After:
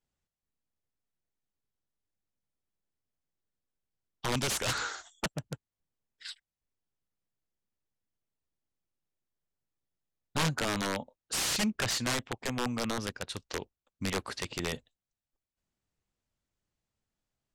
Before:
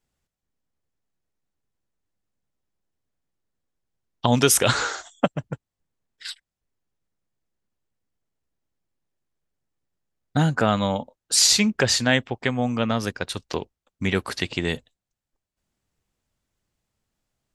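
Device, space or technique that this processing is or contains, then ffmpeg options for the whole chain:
overflowing digital effects unit: -filter_complex "[0:a]asettb=1/sr,asplit=3[a][b][c];[a]atrim=end=4.254[d];[b]atrim=start=4.25:end=5.11,asetpts=PTS-STARTPTS,afade=t=in:d=0.004:c=qsin,afade=t=out:st=0.856:d=0.004:c=qsin,equalizer=f=520:w=1:g=-5.5[e];[c]atrim=start=5.106[f];[d][e]acrossfade=d=0.004:c1=hsin:c2=qsin[g];[g][f]acrossfade=d=0.004:c1=qsin:c2=hsin,aeval=exprs='(mod(5.31*val(0)+1,2)-1)/5.31':c=same,lowpass=9.3k,volume=-8dB"

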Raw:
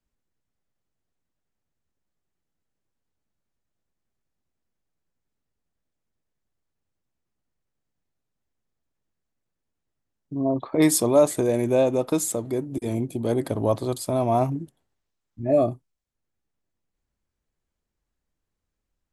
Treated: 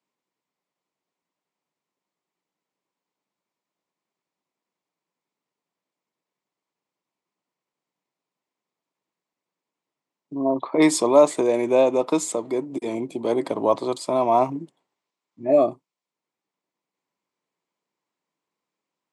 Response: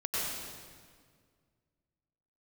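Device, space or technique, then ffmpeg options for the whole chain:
television speaker: -af "highpass=f=190:w=0.5412,highpass=f=190:w=1.3066,equalizer=f=230:t=q:w=4:g=-6,equalizer=f=1k:t=q:w=4:g=8,equalizer=f=1.6k:t=q:w=4:g=-5,equalizer=f=2.2k:t=q:w=4:g=4,equalizer=f=6.2k:t=q:w=4:g=-3,lowpass=f=7.9k:w=0.5412,lowpass=f=7.9k:w=1.3066,volume=2.5dB"

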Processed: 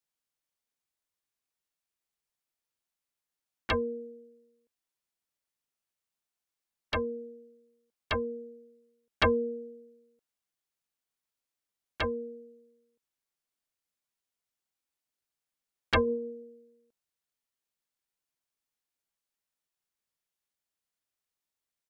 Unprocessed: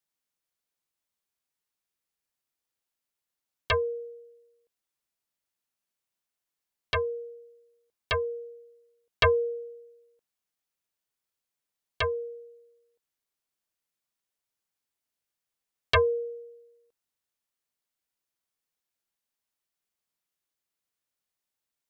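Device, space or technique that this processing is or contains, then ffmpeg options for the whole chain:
octave pedal: -filter_complex "[0:a]asettb=1/sr,asplit=3[a][b][c];[a]atrim=end=16.014[d];[b]atrim=start=16.01:end=16.43,asetpts=PTS-STARTPTS,afade=t=in:d=0.004:c=qsin,afade=t=out:st=0.416:d=0.004:c=qsin,bandreject=f=47.74:t=h:w=4,bandreject=f=95.48:t=h:w=4,bandreject=f=143.22:t=h:w=4,bandreject=f=190.96:t=h:w=4,bandreject=f=238.7:t=h:w=4,bandreject=f=286.44:t=h:w=4,bandreject=f=334.18:t=h:w=4,bandreject=f=381.92:t=h:w=4,bandreject=f=429.66:t=h:w=4,bandreject=f=477.4:t=h:w=4,bandreject=f=525.14:t=h:w=4,bandreject=f=572.88:t=h:w=4,bandreject=f=620.62:t=h:w=4,bandreject=f=668.36:t=h:w=4,bandreject=f=716.1:t=h:w=4,bandreject=f=763.84:t=h:w=4,bandreject=f=811.58:t=h:w=4,bandreject=f=859.32:t=h:w=4,bandreject=f=907.06:t=h:w=4,bandreject=f=954.8:t=h:w=4,bandreject=f=1.00254k:t=h:w=4,bandreject=f=1.05028k:t=h:w=4[e];[c]atrim=start=16.426[f];[d][e]acrossfade=d=0.004:c1=hsin:c2=qsin[g];[g][f]acrossfade=d=0.004:c1=qsin:c2=hsin,asplit=2[h][i];[i]asetrate=22050,aresample=44100,atempo=2,volume=-6dB[j];[h][j]amix=inputs=2:normalize=0,volume=-4dB"

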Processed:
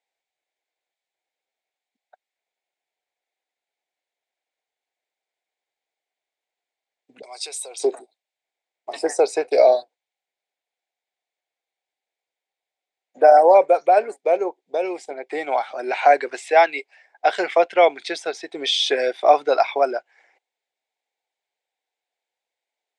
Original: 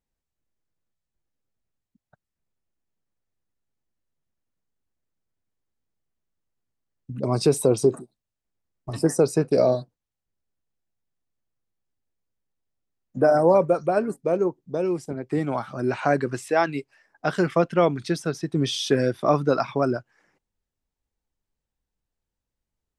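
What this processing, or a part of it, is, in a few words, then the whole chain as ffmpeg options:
phone speaker on a table: -filter_complex "[0:a]highpass=f=450:w=0.5412,highpass=f=450:w=1.3066,equalizer=f=750:t=q:w=4:g=9,equalizer=f=1.2k:t=q:w=4:g=-9,equalizer=f=2.2k:t=q:w=4:g=10,equalizer=f=3.6k:t=q:w=4:g=6,equalizer=f=5.8k:t=q:w=4:g=-4,lowpass=f=8.2k:w=0.5412,lowpass=f=8.2k:w=1.3066,asettb=1/sr,asplit=3[a][b][c];[a]atrim=end=7.224[d];[b]atrim=start=7.22:end=7.8,asetpts=PTS-STARTPTS,afade=t=in:d=0.004:c=qsin,afade=t=out:st=0.576:d=0.004:c=qsin,aderivative[e];[c]atrim=start=7.796[f];[d][e]acrossfade=d=0.004:c1=hsin:c2=qsin[g];[g][f]acrossfade=d=0.004:c1=qsin:c2=hsin,volume=4dB"

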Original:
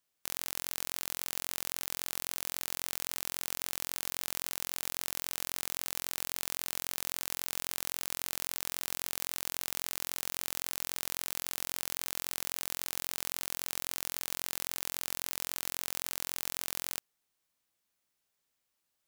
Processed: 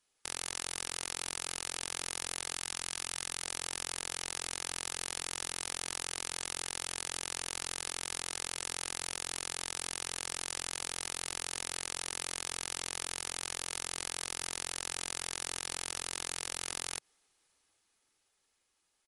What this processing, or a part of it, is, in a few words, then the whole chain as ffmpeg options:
low-bitrate web radio: -filter_complex "[0:a]asettb=1/sr,asplit=3[a][b][c];[a]atrim=end=2.554[d];[b]atrim=start=2.55:end=3.43,asetpts=PTS-STARTPTS,afade=t=in:d=0.004:c=qsin,afade=t=out:st=0.876:d=0.004:c=qsin,equalizer=f=530:t=o:w=1.4:g=-4.5[e];[c]atrim=start=3.426[f];[d][e]acrossfade=d=0.004:c1=hsin:c2=qsin[g];[g][f]acrossfade=d=0.004:c1=qsin:c2=hsin,equalizer=f=140:t=o:w=0.41:g=-6,aecho=1:1:2.4:0.3,dynaudnorm=f=190:g=21:m=11dB,alimiter=limit=-12.5dB:level=0:latency=1:release=83,volume=5.5dB" -ar 48000 -c:a libmp3lame -b:a 48k

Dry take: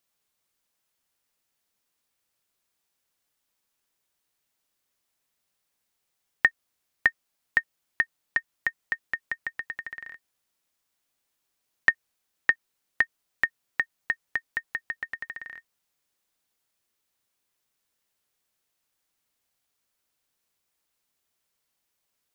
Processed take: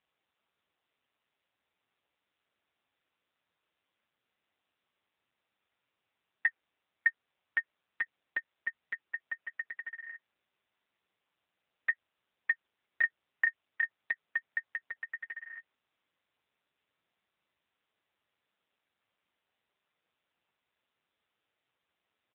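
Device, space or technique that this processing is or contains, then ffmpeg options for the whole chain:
telephone: -filter_complex "[0:a]asplit=3[a][b][c];[a]afade=t=out:st=13.01:d=0.02[d];[b]asplit=2[e][f];[f]adelay=33,volume=-4.5dB[g];[e][g]amix=inputs=2:normalize=0,afade=t=in:st=13.01:d=0.02,afade=t=out:st=13.96:d=0.02[h];[c]afade=t=in:st=13.96:d=0.02[i];[d][h][i]amix=inputs=3:normalize=0,highpass=300,lowpass=3.5k,asoftclip=type=tanh:threshold=-9.5dB,volume=1.5dB" -ar 8000 -c:a libopencore_amrnb -b:a 6700

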